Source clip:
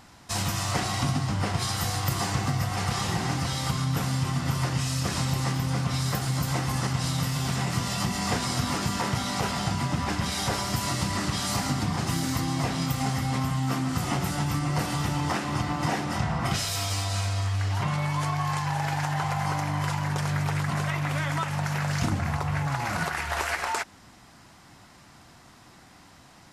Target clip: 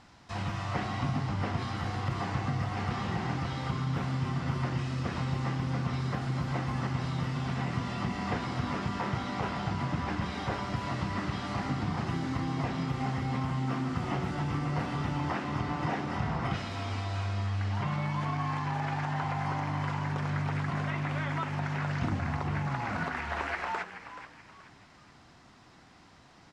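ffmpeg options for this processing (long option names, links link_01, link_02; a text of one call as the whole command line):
ffmpeg -i in.wav -filter_complex "[0:a]acrossover=split=3000[link_01][link_02];[link_02]acompressor=threshold=-46dB:ratio=4:attack=1:release=60[link_03];[link_01][link_03]amix=inputs=2:normalize=0,lowpass=5500,asplit=4[link_04][link_05][link_06][link_07];[link_05]adelay=428,afreqshift=110,volume=-12dB[link_08];[link_06]adelay=856,afreqshift=220,volume=-21.4dB[link_09];[link_07]adelay=1284,afreqshift=330,volume=-30.7dB[link_10];[link_04][link_08][link_09][link_10]amix=inputs=4:normalize=0,volume=-4.5dB" out.wav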